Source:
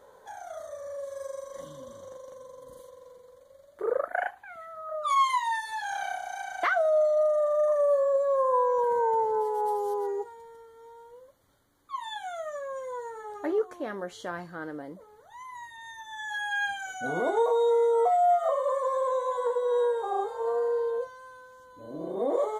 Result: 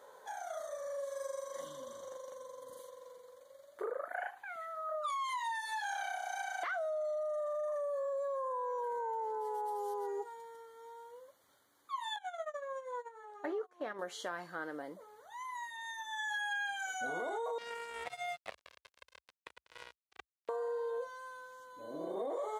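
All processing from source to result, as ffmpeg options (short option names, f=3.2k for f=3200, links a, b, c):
-filter_complex "[0:a]asettb=1/sr,asplit=3[a][b][c];[a]atrim=end=12.164[d];[b]atrim=start=12.16:end=13.99,asetpts=PTS-STARTPTS,afade=t=in:d=0.004:c=qsin,afade=t=out:st=1.826:d=0.004:c=qsin,agate=range=-25dB:threshold=-36dB:ratio=16:release=100:detection=peak,lowpass=f=3.9k:p=1,acompressor=mode=upward:threshold=-34dB:ratio=2.5:attack=3.2:release=140:knee=2.83:detection=peak[e];[c]atrim=start=13.986[f];[d][e]acrossfade=d=0.004:c1=hsin:c2=qsin[g];[g][f]acrossfade=d=0.004:c1=qsin:c2=hsin,asettb=1/sr,asplit=3[h][i][j];[h]atrim=end=17.584[k];[i]atrim=start=17.58:end=20.49,asetpts=PTS-STARTPTS,afade=t=in:d=0.004:c=qsin,afade=t=out:st=2.906:d=0.004:c=qsin,acrusher=bits=2:mix=0:aa=0.5,equalizer=f=62:t=o:w=1.1:g=10.5,acrossover=split=910|4700[l][m][n];[l]acompressor=threshold=-39dB:ratio=4[o];[m]acompressor=threshold=-45dB:ratio=4[p];[n]acompressor=threshold=-57dB:ratio=4[q];[o][p][q]amix=inputs=3:normalize=0[r];[j]atrim=start=20.486[s];[k][r]acrossfade=d=0.004:c1=hsin:c2=qsin[t];[t][s]acrossfade=d=0.004:c1=qsin:c2=hsin,highpass=f=630:p=1,alimiter=level_in=1.5dB:limit=-24dB:level=0:latency=1:release=14,volume=-1.5dB,acompressor=threshold=-36dB:ratio=6,volume=1dB"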